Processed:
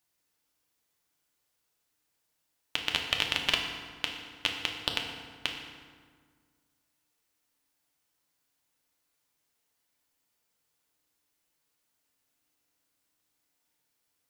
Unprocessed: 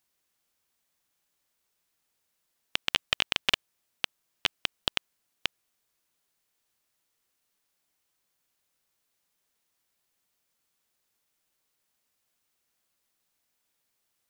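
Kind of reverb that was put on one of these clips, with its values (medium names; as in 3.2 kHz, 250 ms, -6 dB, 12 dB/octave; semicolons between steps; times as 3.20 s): FDN reverb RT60 1.7 s, low-frequency decay 1.3×, high-frequency decay 0.65×, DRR 1 dB; trim -2.5 dB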